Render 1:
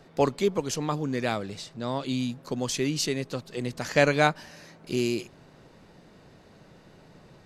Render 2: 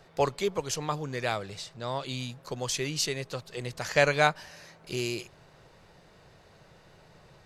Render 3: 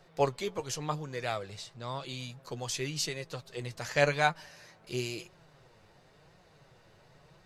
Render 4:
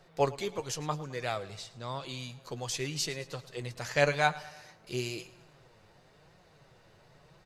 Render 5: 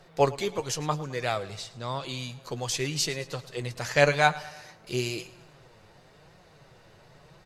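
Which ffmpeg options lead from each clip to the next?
-af "equalizer=f=250:t=o:w=1:g=-12"
-af "flanger=delay=5.3:depth=4.1:regen=45:speed=0.94:shape=triangular"
-af "aecho=1:1:107|214|321|428:0.112|0.0583|0.0303|0.0158"
-af "volume=5.5dB" -ar 44100 -c:a libmp3lame -b:a 96k

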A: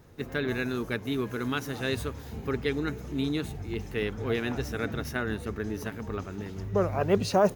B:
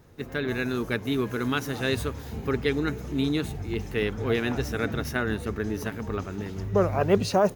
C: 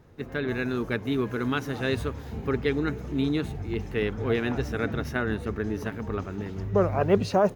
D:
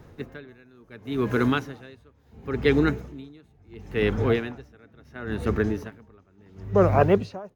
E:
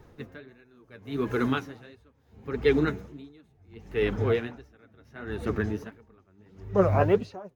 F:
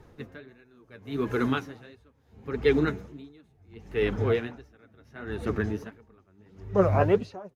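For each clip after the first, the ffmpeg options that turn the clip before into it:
-af "dynaudnorm=f=240:g=5:m=3.5dB"
-af "highshelf=f=4.7k:g=-10.5"
-filter_complex "[0:a]acrossover=split=380|5900[a][b][c];[c]alimiter=level_in=21dB:limit=-24dB:level=0:latency=1:release=211,volume=-21dB[d];[a][b][d]amix=inputs=3:normalize=0,aeval=exprs='val(0)*pow(10,-32*(0.5-0.5*cos(2*PI*0.72*n/s))/20)':c=same,volume=7dB"
-af "flanger=delay=2.2:depth=8.6:regen=35:speed=1.5:shape=sinusoidal"
-af "aresample=32000,aresample=44100"

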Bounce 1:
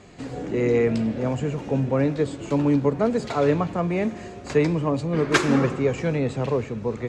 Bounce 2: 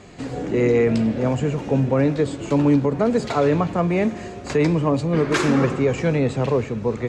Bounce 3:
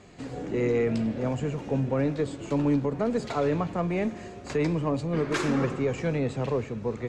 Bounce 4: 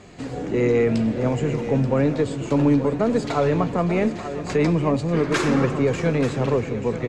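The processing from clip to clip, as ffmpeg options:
-af "alimiter=level_in=12dB:limit=-1dB:release=50:level=0:latency=1,volume=-8dB"
-af "aeval=exprs='0.376*(cos(1*acos(clip(val(0)/0.376,-1,1)))-cos(1*PI/2))+0.00668*(cos(6*acos(clip(val(0)/0.376,-1,1)))-cos(6*PI/2))':c=same,volume=-7.5dB"
-af "aecho=1:1:592|883:0.178|0.266,volume=6dB"

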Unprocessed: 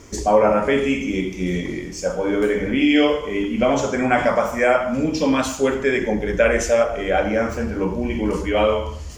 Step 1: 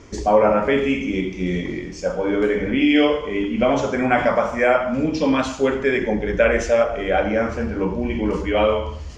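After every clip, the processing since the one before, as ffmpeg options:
-af "lowpass=4.7k"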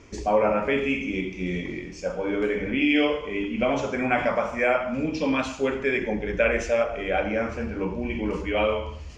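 -af "equalizer=f=2.5k:w=4.2:g=7.5,volume=-6dB"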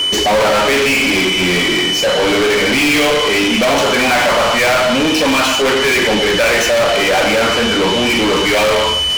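-filter_complex "[0:a]aeval=exprs='val(0)+0.00891*sin(2*PI*3000*n/s)':c=same,asplit=2[a][b];[b]highpass=f=720:p=1,volume=37dB,asoftclip=type=tanh:threshold=-8.5dB[c];[a][c]amix=inputs=2:normalize=0,lowpass=f=6.5k:p=1,volume=-6dB,volume=2dB"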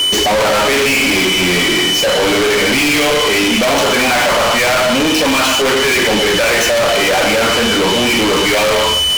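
-af "asoftclip=type=tanh:threshold=-17.5dB,volume=6dB"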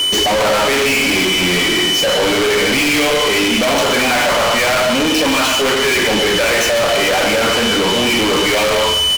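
-af "aecho=1:1:139:0.251,volume=-2dB"

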